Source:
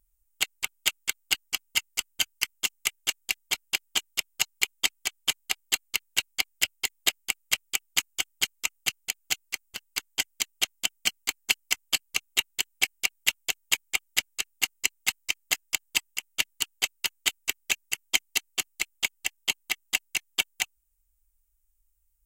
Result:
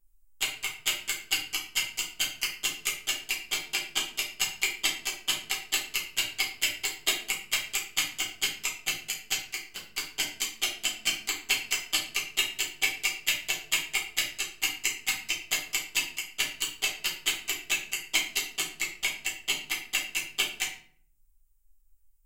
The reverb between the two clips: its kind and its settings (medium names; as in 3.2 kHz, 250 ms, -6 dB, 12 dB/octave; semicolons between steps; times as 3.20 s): simulated room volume 55 m³, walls mixed, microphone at 1.2 m; trim -6.5 dB